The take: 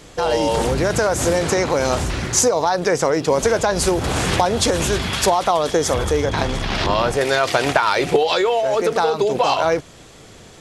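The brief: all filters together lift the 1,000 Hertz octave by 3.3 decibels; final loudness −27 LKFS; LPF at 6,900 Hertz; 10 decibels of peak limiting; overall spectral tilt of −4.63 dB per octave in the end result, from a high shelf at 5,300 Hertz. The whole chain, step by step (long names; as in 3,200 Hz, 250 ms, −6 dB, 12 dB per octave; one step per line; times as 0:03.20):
low-pass filter 6,900 Hz
parametric band 1,000 Hz +4.5 dB
high-shelf EQ 5,300 Hz −7.5 dB
level −7 dB
brickwall limiter −17 dBFS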